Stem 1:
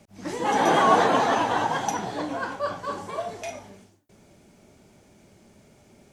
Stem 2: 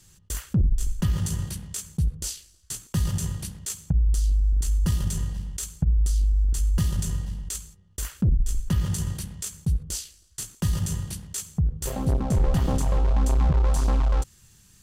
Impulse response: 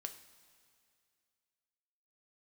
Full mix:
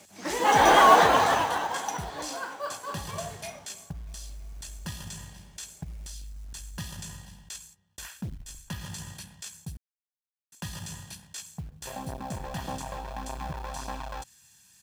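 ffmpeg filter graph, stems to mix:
-filter_complex "[0:a]volume=-1.5dB,afade=t=out:st=0.85:d=0.78:silence=0.354813,asplit=2[a][b];[b]volume=-22dB[c];[1:a]acrossover=split=5400[d][e];[e]acompressor=threshold=-43dB:ratio=4:attack=1:release=60[f];[d][f]amix=inputs=2:normalize=0,aecho=1:1:1.2:0.53,acontrast=28,volume=-13.5dB,asplit=3[g][h][i];[g]atrim=end=9.77,asetpts=PTS-STARTPTS,afade=t=out:st=9.766:d=0.004:c=hsin[j];[h]atrim=start=9.77:end=10.52,asetpts=PTS-STARTPTS,volume=0[k];[i]atrim=start=10.52,asetpts=PTS-STARTPTS,afade=t=in:d=0.004:c=hsin[l];[j][k][l]concat=n=3:v=0:a=1[m];[c]aecho=0:1:320|640|960|1280|1600|1920|2240|2560|2880|3200:1|0.6|0.36|0.216|0.13|0.0778|0.0467|0.028|0.0168|0.0101[n];[a][m][n]amix=inputs=3:normalize=0,highpass=f=670:p=1,acontrast=74,acrusher=bits=6:mode=log:mix=0:aa=0.000001"

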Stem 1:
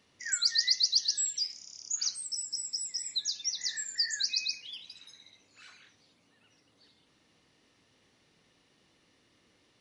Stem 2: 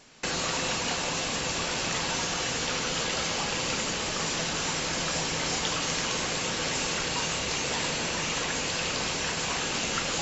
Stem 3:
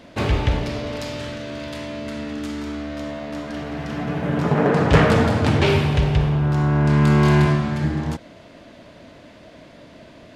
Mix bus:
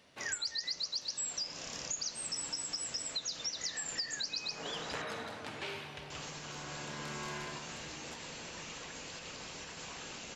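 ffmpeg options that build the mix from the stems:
-filter_complex "[0:a]volume=1.5dB[a];[1:a]alimiter=limit=-21dB:level=0:latency=1:release=123,adelay=400,volume=-14.5dB,asplit=3[b][c][d];[b]atrim=end=5.02,asetpts=PTS-STARTPTS,afade=t=out:st=5.016:d=0.004:c=hsin[e];[c]atrim=start=5.02:end=6.1,asetpts=PTS-STARTPTS,volume=0[f];[d]atrim=start=6.1,asetpts=PTS-STARTPTS,afade=t=in:d=0.004:c=hsin[g];[e][f][g]concat=n=3:v=0:a=1[h];[2:a]highpass=f=1.1k:p=1,volume=-16.5dB[i];[a][h][i]amix=inputs=3:normalize=0,acompressor=threshold=-35dB:ratio=6"

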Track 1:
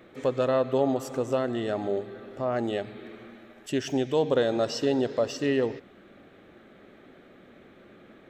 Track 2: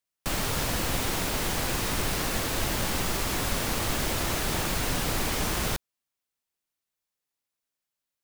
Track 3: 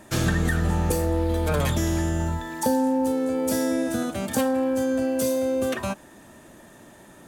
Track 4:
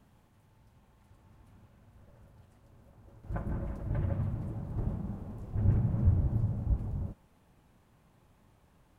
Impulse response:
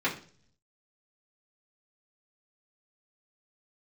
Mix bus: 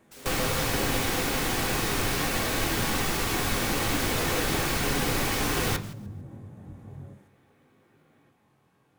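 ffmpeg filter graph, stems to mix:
-filter_complex "[0:a]volume=-18.5dB,asplit=2[a][b];[b]volume=-7.5dB[c];[1:a]volume=-1.5dB,asplit=3[d][e][f];[e]volume=-11dB[g];[f]volume=-19dB[h];[2:a]aeval=exprs='(mod(16.8*val(0)+1,2)-1)/16.8':c=same,volume=-19dB[i];[3:a]highpass=120,acompressor=threshold=-39dB:ratio=3,flanger=delay=19.5:depth=3.1:speed=0.52,volume=-0.5dB,asplit=2[j][k];[k]volume=-9.5dB[l];[4:a]atrim=start_sample=2205[m];[c][g][l]amix=inputs=3:normalize=0[n];[n][m]afir=irnorm=-1:irlink=0[o];[h]aecho=0:1:150|300|450|600|750:1|0.32|0.102|0.0328|0.0105[p];[a][d][i][j][o][p]amix=inputs=6:normalize=0"

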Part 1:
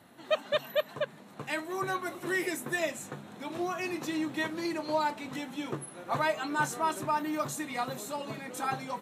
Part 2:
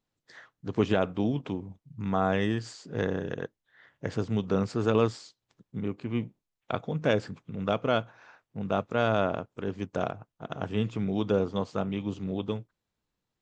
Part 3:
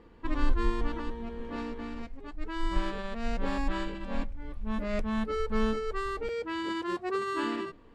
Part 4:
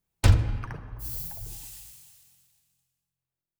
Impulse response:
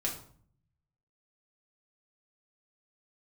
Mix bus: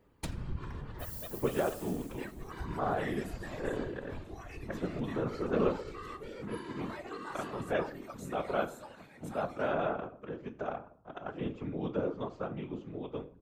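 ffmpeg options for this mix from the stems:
-filter_complex "[0:a]adelay=700,volume=-8.5dB[a];[1:a]acrossover=split=200 2600:gain=0.224 1 0.251[b][c][d];[b][c][d]amix=inputs=3:normalize=0,adelay=650,volume=-3dB,asplit=2[e][f];[f]volume=-7dB[g];[2:a]volume=-7dB,asplit=2[h][i];[i]volume=-13.5dB[j];[3:a]volume=1dB,asplit=2[k][l];[l]volume=-23.5dB[m];[a][h][k]amix=inputs=3:normalize=0,acompressor=threshold=-33dB:ratio=6,volume=0dB[n];[4:a]atrim=start_sample=2205[o];[g][j][m]amix=inputs=3:normalize=0[p];[p][o]afir=irnorm=-1:irlink=0[q];[e][n][q]amix=inputs=3:normalize=0,afftfilt=real='hypot(re,im)*cos(2*PI*random(0))':imag='hypot(re,im)*sin(2*PI*random(1))':win_size=512:overlap=0.75"

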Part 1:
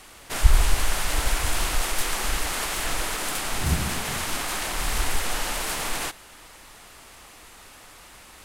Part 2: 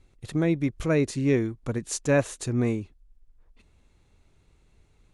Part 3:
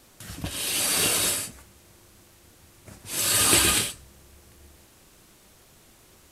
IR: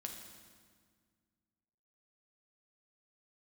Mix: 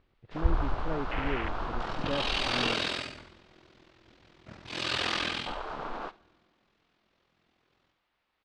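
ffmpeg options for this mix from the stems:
-filter_complex "[0:a]agate=range=-11dB:threshold=-37dB:ratio=16:detection=peak,afwtdn=0.0398,volume=-2.5dB,asplit=3[a][b][c];[a]atrim=end=2.74,asetpts=PTS-STARTPTS,afade=t=out:st=2.736:d=0.004:c=hsin[d];[b]atrim=start=2.74:end=5.46,asetpts=PTS-STARTPTS,volume=0[e];[c]atrim=start=5.46,asetpts=PTS-STARTPTS,afade=t=in:d=0.004:c=hsin[f];[d][e][f]concat=n=3:v=0:a=1,asplit=3[g][h][i];[h]volume=-17dB[j];[i]volume=-23.5dB[k];[1:a]acompressor=mode=upward:threshold=-45dB:ratio=2.5,lowpass=1.4k,volume=-11dB[l];[2:a]agate=range=-33dB:threshold=-50dB:ratio=3:detection=peak,aeval=exprs='0.531*(cos(1*acos(clip(val(0)/0.531,-1,1)))-cos(1*PI/2))+0.237*(cos(3*acos(clip(val(0)/0.531,-1,1)))-cos(3*PI/2))+0.15*(cos(7*acos(clip(val(0)/0.531,-1,1)))-cos(7*PI/2))':c=same,aeval=exprs='val(0)*sin(2*PI*21*n/s)':c=same,adelay=1600,volume=-5dB,afade=t=out:st=5.05:d=0.51:silence=0.237137,asplit=3[m][n][o];[n]volume=-13dB[p];[o]volume=-5.5dB[q];[3:a]atrim=start_sample=2205[r];[j][p]amix=inputs=2:normalize=0[s];[s][r]afir=irnorm=-1:irlink=0[t];[k][q]amix=inputs=2:normalize=0,aecho=0:1:70|140|210|280|350:1|0.38|0.144|0.0549|0.0209[u];[g][l][m][t][u]amix=inputs=5:normalize=0,lowpass=f=4.2k:w=0.5412,lowpass=f=4.2k:w=1.3066,lowshelf=f=110:g=-9"

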